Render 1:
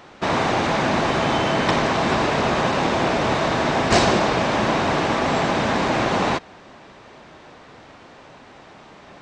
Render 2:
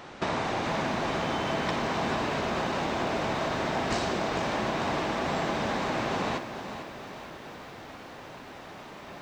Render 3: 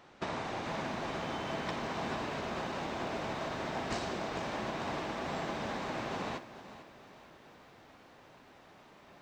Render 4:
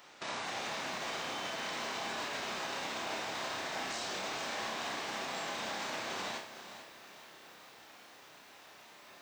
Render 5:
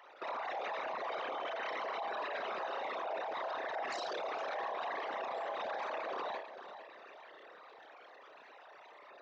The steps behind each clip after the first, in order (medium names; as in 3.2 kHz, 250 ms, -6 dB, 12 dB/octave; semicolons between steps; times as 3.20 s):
compression 5:1, threshold -28 dBFS, peak gain reduction 15 dB; on a send: flutter echo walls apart 8.9 m, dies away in 0.26 s; on the sum: bit-crushed delay 447 ms, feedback 55%, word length 9-bit, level -10 dB
upward expansion 1.5:1, over -40 dBFS; trim -6.5 dB
tilt EQ +3.5 dB/octave; peak limiter -30.5 dBFS, peak gain reduction 10 dB; flutter echo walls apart 5.3 m, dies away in 0.32 s
resonances exaggerated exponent 3